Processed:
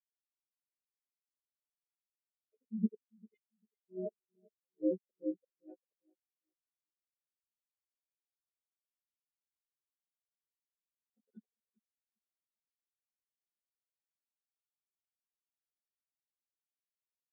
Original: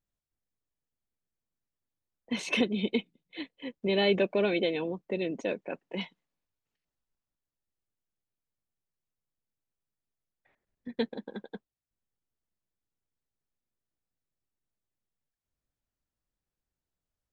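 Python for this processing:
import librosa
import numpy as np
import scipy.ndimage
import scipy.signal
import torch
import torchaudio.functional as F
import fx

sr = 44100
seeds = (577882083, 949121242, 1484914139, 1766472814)

p1 = fx.freq_snap(x, sr, grid_st=3)
p2 = fx.rider(p1, sr, range_db=4, speed_s=2.0)
p3 = p1 + F.gain(torch.from_numpy(p2), -2.5).numpy()
p4 = fx.env_lowpass_down(p3, sr, base_hz=630.0, full_db=-22.0)
p5 = fx.auto_swell(p4, sr, attack_ms=445.0)
p6 = fx.quant_dither(p5, sr, seeds[0], bits=6, dither='none')
p7 = fx.gate_flip(p6, sr, shuts_db=-19.0, range_db=-26)
p8 = p7 + fx.echo_feedback(p7, sr, ms=396, feedback_pct=58, wet_db=-6.5, dry=0)
p9 = fx.spectral_expand(p8, sr, expansion=4.0)
y = F.gain(torch.from_numpy(p9), -3.5).numpy()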